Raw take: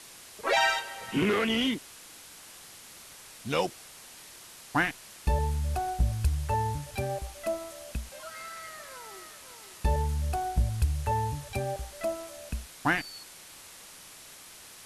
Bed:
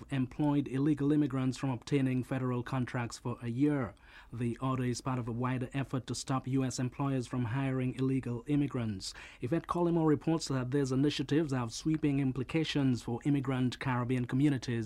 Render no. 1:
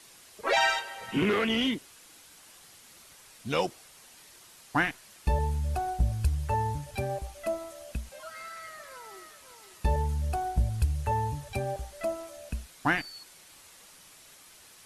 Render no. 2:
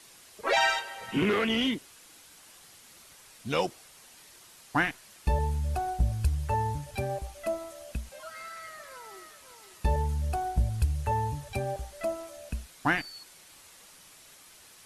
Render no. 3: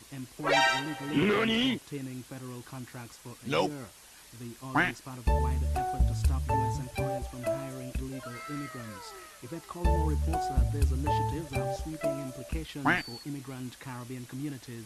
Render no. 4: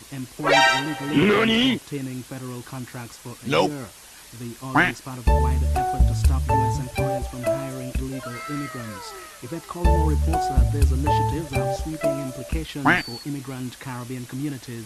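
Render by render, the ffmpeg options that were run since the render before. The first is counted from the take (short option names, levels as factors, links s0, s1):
-af "afftdn=nr=6:nf=-49"
-af anull
-filter_complex "[1:a]volume=0.376[s0];[0:a][s0]amix=inputs=2:normalize=0"
-af "volume=2.51"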